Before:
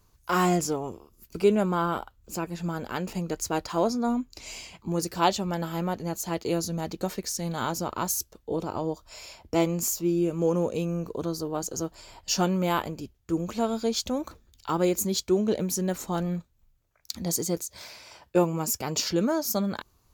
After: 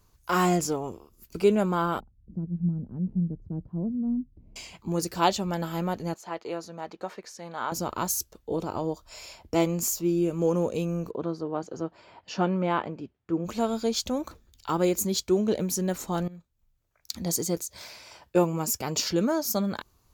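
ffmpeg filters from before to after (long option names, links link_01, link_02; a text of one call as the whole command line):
ffmpeg -i in.wav -filter_complex "[0:a]asettb=1/sr,asplit=3[link_01][link_02][link_03];[link_01]atrim=end=2.004[link_04];[link_02]atrim=start=2:end=4.56,asetpts=PTS-STARTPTS,afade=type=in:duration=0.004:curve=qsin,afade=type=out:start_time=2.556:duration=0.004:curve=qsin,lowpass=frequency=180:width_type=q:width=1.9[link_05];[link_03]atrim=start=4.556[link_06];[link_04][link_05]acrossfade=duration=0.004:curve1=hsin:curve2=qsin[link_07];[link_07][link_06]acrossfade=duration=0.004:curve1=qsin:curve2=hsin,asettb=1/sr,asplit=3[link_08][link_09][link_10];[link_08]atrim=end=6.144[link_11];[link_09]atrim=start=6.14:end=7.72,asetpts=PTS-STARTPTS,afade=type=in:duration=0.004:curve=qsin,afade=type=out:start_time=1.576:duration=0.004:curve=qsin,bandpass=frequency=1100:width_type=q:width=0.8[link_12];[link_10]atrim=start=7.716[link_13];[link_11][link_12]acrossfade=duration=0.004:curve1=hsin:curve2=qsin[link_14];[link_14][link_13]acrossfade=duration=0.004:curve1=qsin:curve2=hsin,asplit=3[link_15][link_16][link_17];[link_15]afade=type=out:start_time=11.1:duration=0.02[link_18];[link_16]highpass=140,lowpass=2400,afade=type=in:start_time=11.1:duration=0.02,afade=type=out:start_time=13.44:duration=0.02[link_19];[link_17]afade=type=in:start_time=13.44:duration=0.02[link_20];[link_18][link_19][link_20]amix=inputs=3:normalize=0,asplit=2[link_21][link_22];[link_21]atrim=end=16.28,asetpts=PTS-STARTPTS,afade=type=out:start_time=16.276:duration=0.004:curve=hsin:silence=0.11885[link_23];[link_22]atrim=start=16.28,asetpts=PTS-STARTPTS,afade=type=in:duration=0.83:silence=0.11885[link_24];[link_23][link_24]concat=n=2:v=0:a=1" out.wav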